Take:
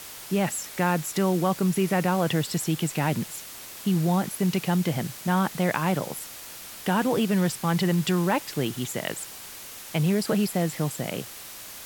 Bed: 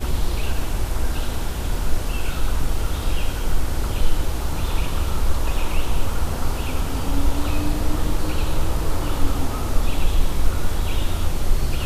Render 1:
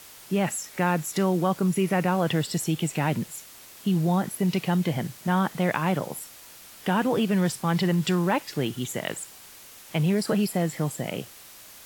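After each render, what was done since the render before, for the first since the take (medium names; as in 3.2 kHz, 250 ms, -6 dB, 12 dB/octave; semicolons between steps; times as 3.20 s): noise print and reduce 6 dB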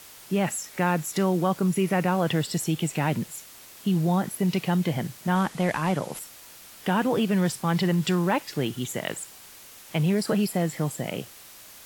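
5.35–6.19 s: CVSD coder 64 kbps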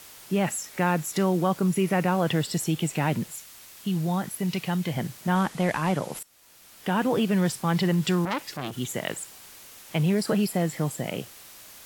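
3.35–4.97 s: peaking EQ 370 Hz -5 dB 2.7 oct; 6.23–7.07 s: fade in, from -19 dB; 8.25–8.77 s: transformer saturation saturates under 2.2 kHz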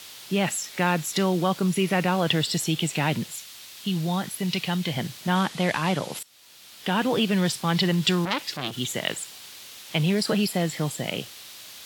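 high-pass 67 Hz; peaking EQ 3.7 kHz +10 dB 1.3 oct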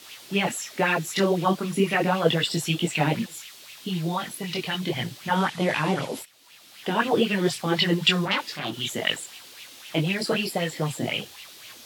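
chorus voices 6, 0.69 Hz, delay 22 ms, depth 4.6 ms; sweeping bell 3.9 Hz 270–2800 Hz +12 dB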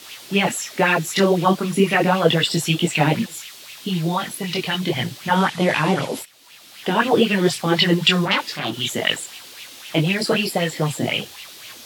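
trim +5.5 dB; peak limiter -3 dBFS, peak gain reduction 2 dB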